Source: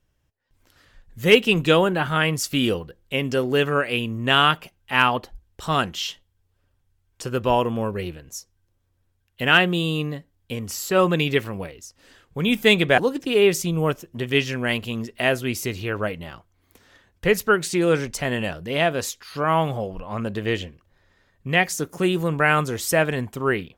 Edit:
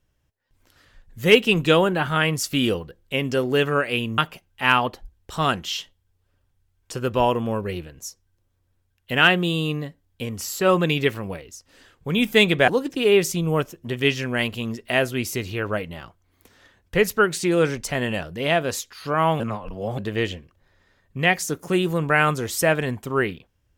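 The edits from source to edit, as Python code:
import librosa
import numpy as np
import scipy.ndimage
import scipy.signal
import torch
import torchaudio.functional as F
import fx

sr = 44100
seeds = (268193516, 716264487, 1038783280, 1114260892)

y = fx.edit(x, sr, fx.cut(start_s=4.18, length_s=0.3),
    fx.reverse_span(start_s=19.7, length_s=0.58), tone=tone)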